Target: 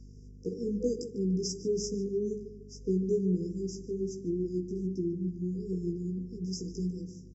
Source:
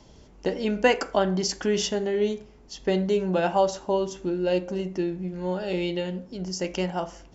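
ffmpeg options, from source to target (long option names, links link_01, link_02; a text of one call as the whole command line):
ffmpeg -i in.wav -filter_complex "[0:a]afftfilt=real='re*(1-between(b*sr/4096,500,4800))':imag='im*(1-between(b*sr/4096,500,4800))':win_size=4096:overlap=0.75,flanger=delay=15.5:depth=2.3:speed=2.4,aeval=exprs='val(0)+0.00631*(sin(2*PI*50*n/s)+sin(2*PI*2*50*n/s)/2+sin(2*PI*3*50*n/s)/3+sin(2*PI*4*50*n/s)/4+sin(2*PI*5*50*n/s)/5)':channel_layout=same,aresample=32000,aresample=44100,adynamicequalizer=threshold=0.00794:dfrequency=190:dqfactor=3.4:tfrequency=190:tqfactor=3.4:attack=5:release=100:ratio=0.375:range=2:mode=boostabove:tftype=bell,asplit=2[link_01][link_02];[link_02]adelay=148,lowpass=frequency=2300:poles=1,volume=-11dB,asplit=2[link_03][link_04];[link_04]adelay=148,lowpass=frequency=2300:poles=1,volume=0.42,asplit=2[link_05][link_06];[link_06]adelay=148,lowpass=frequency=2300:poles=1,volume=0.42,asplit=2[link_07][link_08];[link_08]adelay=148,lowpass=frequency=2300:poles=1,volume=0.42[link_09];[link_03][link_05][link_07][link_09]amix=inputs=4:normalize=0[link_10];[link_01][link_10]amix=inputs=2:normalize=0,volume=-4dB" out.wav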